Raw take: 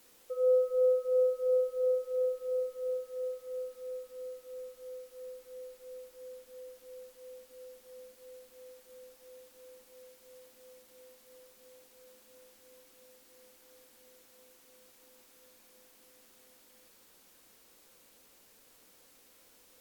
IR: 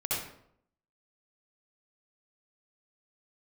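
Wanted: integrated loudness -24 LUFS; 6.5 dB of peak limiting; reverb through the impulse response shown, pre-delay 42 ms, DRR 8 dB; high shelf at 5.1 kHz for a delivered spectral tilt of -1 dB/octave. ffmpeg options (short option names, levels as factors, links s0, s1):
-filter_complex "[0:a]highshelf=f=5100:g=7,alimiter=level_in=1.26:limit=0.0631:level=0:latency=1,volume=0.794,asplit=2[s0][s1];[1:a]atrim=start_sample=2205,adelay=42[s2];[s1][s2]afir=irnorm=-1:irlink=0,volume=0.188[s3];[s0][s3]amix=inputs=2:normalize=0,volume=3.98"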